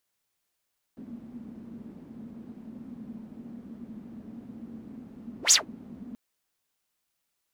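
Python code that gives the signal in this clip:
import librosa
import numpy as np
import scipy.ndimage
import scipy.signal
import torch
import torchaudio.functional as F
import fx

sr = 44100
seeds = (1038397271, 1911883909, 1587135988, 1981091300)

y = fx.whoosh(sr, seeds[0], length_s=5.18, peak_s=4.55, rise_s=0.11, fall_s=0.14, ends_hz=230.0, peak_hz=7000.0, q=8.3, swell_db=27)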